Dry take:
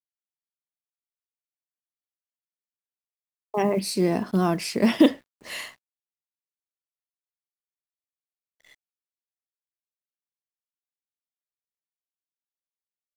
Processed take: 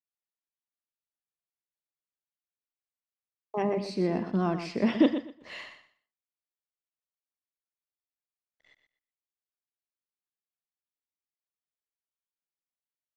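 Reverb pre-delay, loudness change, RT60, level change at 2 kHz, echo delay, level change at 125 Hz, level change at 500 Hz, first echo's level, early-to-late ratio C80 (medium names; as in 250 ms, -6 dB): no reverb, -5.5 dB, no reverb, -6.0 dB, 122 ms, -5.0 dB, -5.0 dB, -10.0 dB, no reverb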